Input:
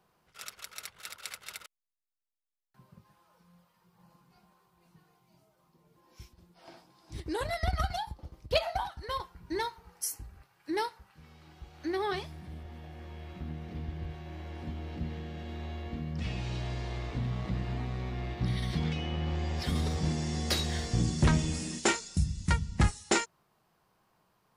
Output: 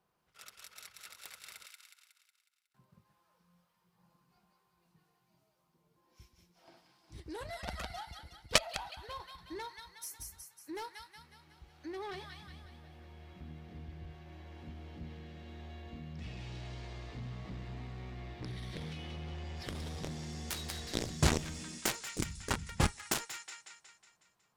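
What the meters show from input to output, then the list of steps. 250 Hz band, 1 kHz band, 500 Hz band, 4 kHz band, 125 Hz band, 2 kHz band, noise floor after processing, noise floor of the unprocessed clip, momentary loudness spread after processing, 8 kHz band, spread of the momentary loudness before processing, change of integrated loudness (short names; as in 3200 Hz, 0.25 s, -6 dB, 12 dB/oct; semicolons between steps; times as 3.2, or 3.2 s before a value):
-8.0 dB, -7.0 dB, -7.5 dB, -2.5 dB, -9.0 dB, -4.0 dB, -77 dBFS, -73 dBFS, 20 LU, -2.5 dB, 15 LU, -6.5 dB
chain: thin delay 0.183 s, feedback 52%, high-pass 1500 Hz, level -3 dB; added harmonics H 3 -6 dB, 5 -23 dB, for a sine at -14 dBFS; gain +8 dB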